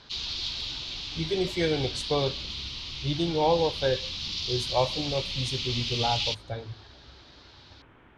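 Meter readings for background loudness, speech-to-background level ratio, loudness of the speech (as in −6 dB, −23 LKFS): −31.5 LKFS, 2.0 dB, −29.5 LKFS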